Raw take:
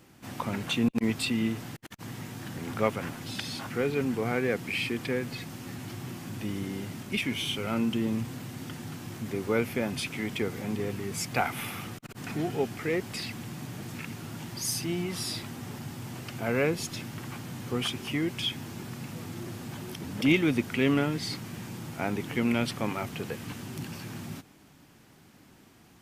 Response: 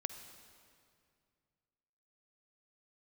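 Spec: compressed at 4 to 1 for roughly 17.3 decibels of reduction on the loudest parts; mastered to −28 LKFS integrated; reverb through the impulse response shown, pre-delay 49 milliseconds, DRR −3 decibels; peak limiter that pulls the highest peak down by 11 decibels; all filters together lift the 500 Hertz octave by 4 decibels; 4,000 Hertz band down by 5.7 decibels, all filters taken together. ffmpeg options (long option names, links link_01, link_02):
-filter_complex "[0:a]equalizer=frequency=500:width_type=o:gain=5,equalizer=frequency=4000:width_type=o:gain=-8,acompressor=threshold=-40dB:ratio=4,alimiter=level_in=11.5dB:limit=-24dB:level=0:latency=1,volume=-11.5dB,asplit=2[link_01][link_02];[1:a]atrim=start_sample=2205,adelay=49[link_03];[link_02][link_03]afir=irnorm=-1:irlink=0,volume=3.5dB[link_04];[link_01][link_04]amix=inputs=2:normalize=0,volume=12dB"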